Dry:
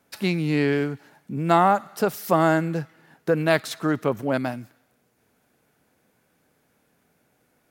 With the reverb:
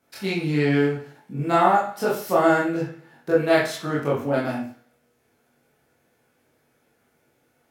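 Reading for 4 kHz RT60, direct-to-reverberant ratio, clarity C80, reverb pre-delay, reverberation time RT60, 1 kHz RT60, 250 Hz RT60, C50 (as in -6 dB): 0.40 s, -6.5 dB, 9.5 dB, 21 ms, 0.45 s, 0.45 s, 0.45 s, 5.0 dB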